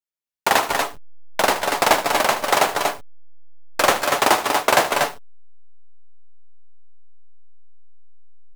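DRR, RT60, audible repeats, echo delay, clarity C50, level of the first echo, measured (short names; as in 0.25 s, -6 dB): none, none, 2, 76 ms, none, -13.5 dB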